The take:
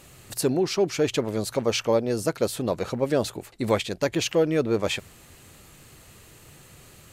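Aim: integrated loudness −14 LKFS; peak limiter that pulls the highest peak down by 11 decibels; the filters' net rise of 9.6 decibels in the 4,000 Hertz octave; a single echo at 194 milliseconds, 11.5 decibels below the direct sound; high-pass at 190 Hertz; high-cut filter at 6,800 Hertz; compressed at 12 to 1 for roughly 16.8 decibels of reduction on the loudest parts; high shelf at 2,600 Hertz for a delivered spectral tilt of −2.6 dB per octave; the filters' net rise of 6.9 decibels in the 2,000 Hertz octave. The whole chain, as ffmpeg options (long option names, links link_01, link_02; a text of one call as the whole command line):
ffmpeg -i in.wav -af "highpass=190,lowpass=6800,equalizer=frequency=2000:width_type=o:gain=3.5,highshelf=frequency=2600:gain=6,equalizer=frequency=4000:width_type=o:gain=6.5,acompressor=threshold=-33dB:ratio=12,alimiter=level_in=4.5dB:limit=-24dB:level=0:latency=1,volume=-4.5dB,aecho=1:1:194:0.266,volume=26.5dB" out.wav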